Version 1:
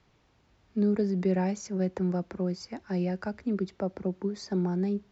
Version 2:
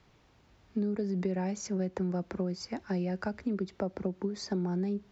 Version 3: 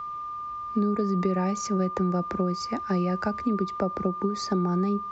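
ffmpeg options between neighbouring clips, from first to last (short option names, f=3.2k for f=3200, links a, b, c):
-af "acompressor=threshold=-31dB:ratio=6,volume=2.5dB"
-af "aeval=exprs='val(0)+0.0126*sin(2*PI*1200*n/s)':c=same,volume=6dB"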